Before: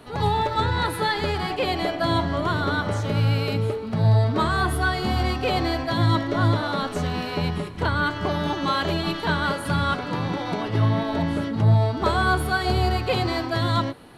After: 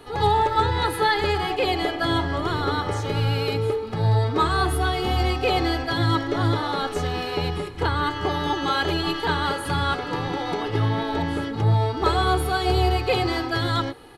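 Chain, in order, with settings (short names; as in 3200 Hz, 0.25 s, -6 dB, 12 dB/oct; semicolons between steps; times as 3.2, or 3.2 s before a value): bell 110 Hz -3.5 dB; comb 2.4 ms, depth 61%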